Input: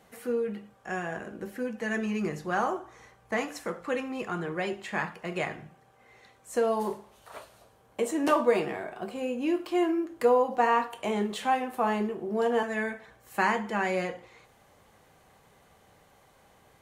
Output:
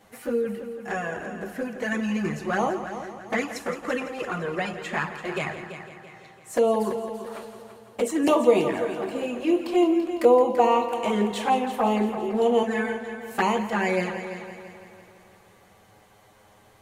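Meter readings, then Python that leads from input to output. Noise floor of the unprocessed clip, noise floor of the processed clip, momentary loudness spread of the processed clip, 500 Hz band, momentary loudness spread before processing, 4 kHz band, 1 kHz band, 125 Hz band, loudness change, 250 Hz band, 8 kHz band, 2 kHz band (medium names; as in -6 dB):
-61 dBFS, -56 dBFS, 16 LU, +5.5 dB, 13 LU, +5.0 dB, +3.5 dB, +5.0 dB, +4.5 dB, +5.5 dB, +4.5 dB, +2.5 dB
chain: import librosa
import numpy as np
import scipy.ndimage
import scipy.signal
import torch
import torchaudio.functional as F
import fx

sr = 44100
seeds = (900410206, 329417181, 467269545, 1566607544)

y = fx.env_flanger(x, sr, rest_ms=10.3, full_db=-23.0)
y = fx.echo_heads(y, sr, ms=168, heads='first and second', feedback_pct=51, wet_db=-13.0)
y = F.gain(torch.from_numpy(y), 6.5).numpy()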